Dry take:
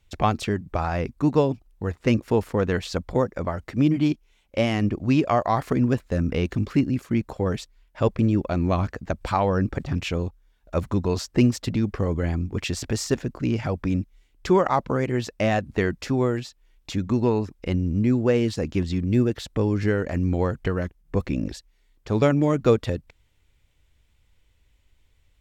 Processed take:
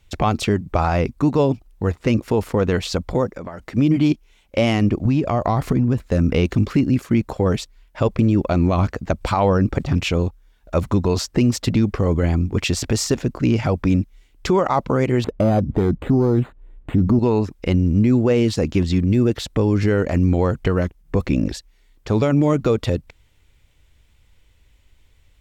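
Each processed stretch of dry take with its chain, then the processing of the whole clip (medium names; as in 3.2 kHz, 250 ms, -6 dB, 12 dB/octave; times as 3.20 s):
3.30–3.75 s: peaking EQ 91 Hz -9 dB 0.83 oct + compression 5:1, threshold -36 dBFS
5.05–6.02 s: bass shelf 250 Hz +11 dB + compression 12:1, threshold -20 dBFS
15.24–17.19 s: self-modulated delay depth 0.23 ms + tilt shelf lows +9.5 dB, about 1.3 kHz + decimation joined by straight lines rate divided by 8×
whole clip: dynamic bell 1.7 kHz, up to -5 dB, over -49 dBFS, Q 5; loudness maximiser +14 dB; trim -7 dB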